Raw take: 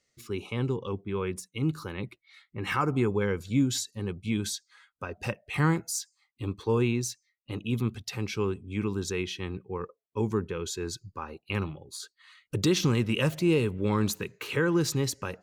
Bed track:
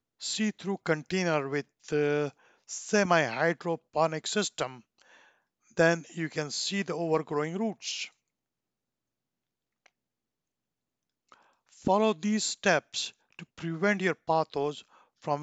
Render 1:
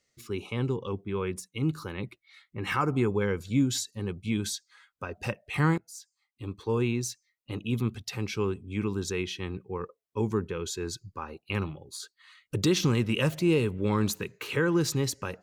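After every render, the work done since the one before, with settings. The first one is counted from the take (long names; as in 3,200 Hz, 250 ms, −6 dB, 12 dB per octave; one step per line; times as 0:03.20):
0:05.78–0:07.52: fade in equal-power, from −20.5 dB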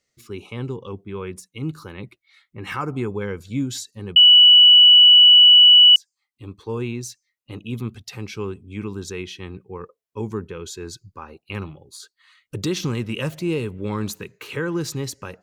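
0:04.16–0:05.96: beep over 2,950 Hz −6.5 dBFS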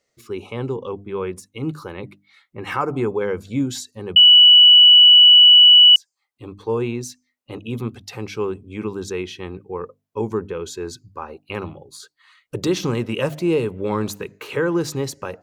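parametric band 630 Hz +8.5 dB 2 octaves
mains-hum notches 50/100/150/200/250/300 Hz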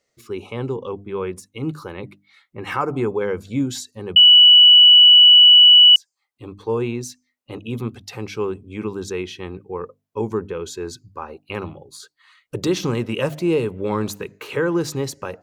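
no processing that can be heard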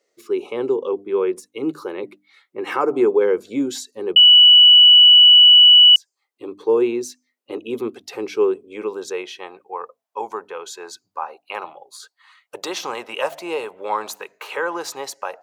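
high-pass filter sweep 370 Hz → 750 Hz, 0:08.34–0:09.66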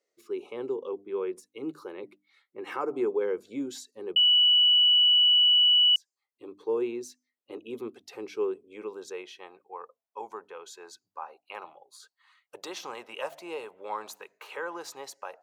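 level −11.5 dB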